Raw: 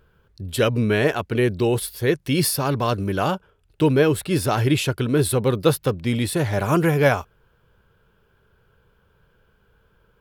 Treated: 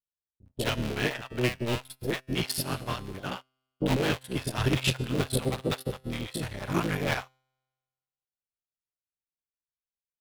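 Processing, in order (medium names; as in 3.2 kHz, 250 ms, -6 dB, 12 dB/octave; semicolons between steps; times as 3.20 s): cycle switcher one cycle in 3, muted; dynamic bell 3.2 kHz, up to +7 dB, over -40 dBFS, Q 0.85; waveshaping leveller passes 2; feedback comb 130 Hz, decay 1.7 s, mix 70%; bands offset in time lows, highs 60 ms, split 600 Hz; upward expansion 2.5:1, over -44 dBFS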